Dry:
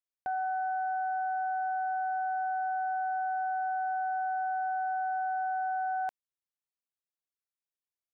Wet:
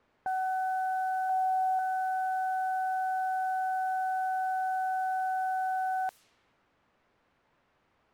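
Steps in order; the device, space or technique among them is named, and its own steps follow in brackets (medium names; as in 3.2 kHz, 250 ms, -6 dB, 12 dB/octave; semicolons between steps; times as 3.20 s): 1.29–1.79 s: comb 3.7 ms, depth 85%; cassette deck with a dynamic noise filter (white noise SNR 29 dB; level-controlled noise filter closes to 1.3 kHz, open at -33 dBFS); trim +1 dB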